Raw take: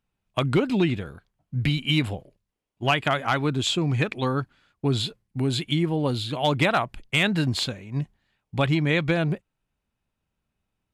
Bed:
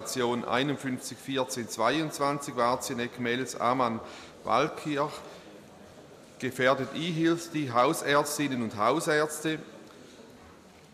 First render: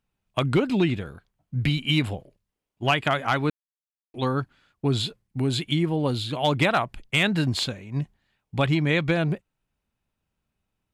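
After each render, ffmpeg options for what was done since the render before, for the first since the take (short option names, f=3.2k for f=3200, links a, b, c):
-filter_complex "[0:a]asplit=3[a][b][c];[a]atrim=end=3.5,asetpts=PTS-STARTPTS,afade=t=out:st=3.496:d=0.004:c=hsin[d];[b]atrim=start=3.5:end=4.14,asetpts=PTS-STARTPTS,volume=0[e];[c]atrim=start=4.14,asetpts=PTS-STARTPTS,afade=t=in:d=0.004:c=hsin[f];[d][e][f]concat=n=3:v=0:a=1"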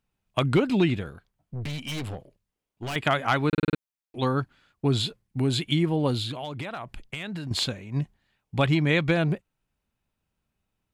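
-filter_complex "[0:a]asettb=1/sr,asplit=3[a][b][c];[a]atrim=end=1.104[d];[b]atrim=start=1.1:end=2.96,asetpts=PTS-STARTPTS,afade=t=in:d=0.004:c=qsin,afade=t=out:st=1.856:d=0.004:c=qsin,aeval=exprs='(tanh(31.6*val(0)+0.35)-tanh(0.35))/31.6':c=same[e];[c]atrim=start=2.956[f];[d][e]acrossfade=d=0.004:c1=hsin:c2=qsin[g];[g][f]acrossfade=d=0.004:c1=qsin:c2=hsin,asettb=1/sr,asplit=3[h][i][j];[h]atrim=end=6.314[k];[i]atrim=start=6.31:end=7.51,asetpts=PTS-STARTPTS,afade=t=in:d=0.004:c=qsin,afade=t=out:st=1.196:d=0.004:c=qsin,acompressor=threshold=-30dB:ratio=16:attack=3.2:release=140:knee=1:detection=peak[l];[j]atrim=start=7.506[m];[k][l]acrossfade=d=0.004:c1=hsin:c2=qsin[n];[n][m]acrossfade=d=0.004:c1=qsin:c2=hsin,asplit=7[o][p][q][r][s][t][u];[o]atrim=end=3.532[v];[p]atrim=start=3.478:end=3.532[w];[q]atrim=start=3.478:end=3.532[x];[r]atrim=start=3.478:end=3.532[y];[s]atrim=start=3.478:end=3.532[z];[t]atrim=start=3.478:end=3.532[aa];[u]atrim=start=3.778[ab];[v][w]acrossfade=d=0.004:c1=hsin:c2=hsin[ac];[ac][x]acrossfade=d=0.004:c1=hsin:c2=hsin[ad];[ad][y]acrossfade=d=0.004:c1=hsin:c2=hsin[ae];[ae][z]acrossfade=d=0.004:c1=hsin:c2=hsin[af];[af][aa]acrossfade=d=0.004:c1=hsin:c2=hsin[ag];[ag][ab]acrossfade=d=0.004:c1=hsin:c2=hsin"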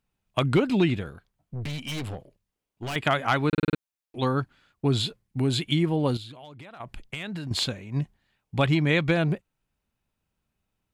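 -filter_complex "[0:a]asplit=3[a][b][c];[a]atrim=end=6.172[d];[b]atrim=start=6.168:end=6.802,asetpts=PTS-STARTPTS,volume=-10.5dB[e];[c]atrim=start=6.798[f];[d][e]acrossfade=d=0.004:c1=hsin:c2=hsin[g];[g][f]acrossfade=d=0.004:c1=hsin:c2=hsin"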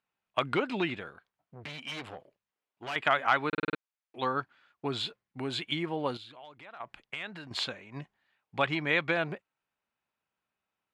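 -af "bandpass=f=1.4k:t=q:w=0.65:csg=0"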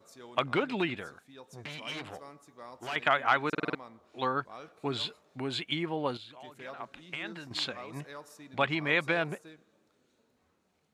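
-filter_complex "[1:a]volume=-21.5dB[a];[0:a][a]amix=inputs=2:normalize=0"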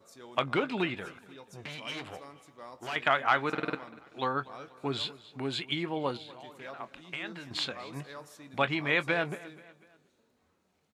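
-filter_complex "[0:a]asplit=2[a][b];[b]adelay=22,volume=-14dB[c];[a][c]amix=inputs=2:normalize=0,aecho=1:1:243|486|729:0.1|0.046|0.0212"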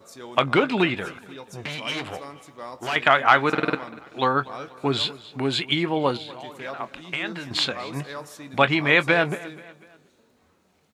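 -af "volume=9.5dB,alimiter=limit=-2dB:level=0:latency=1"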